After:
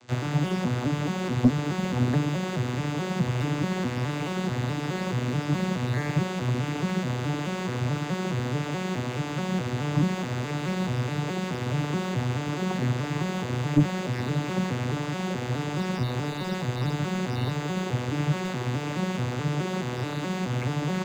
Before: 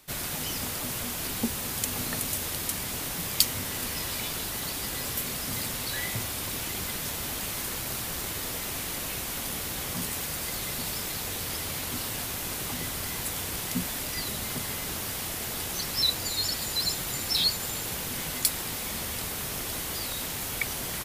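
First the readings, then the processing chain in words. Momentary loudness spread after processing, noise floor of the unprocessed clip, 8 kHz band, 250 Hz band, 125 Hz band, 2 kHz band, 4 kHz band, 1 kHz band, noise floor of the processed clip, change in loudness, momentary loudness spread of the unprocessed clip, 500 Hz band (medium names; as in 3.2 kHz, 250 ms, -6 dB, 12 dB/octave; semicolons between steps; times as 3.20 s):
5 LU, -34 dBFS, -13.5 dB, +12.0 dB, +14.0 dB, +1.5 dB, -8.0 dB, +6.0 dB, -32 dBFS, +1.5 dB, 6 LU, +9.0 dB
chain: vocoder on a broken chord minor triad, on B2, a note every 213 ms; slew-rate limiter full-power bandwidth 22 Hz; trim +8.5 dB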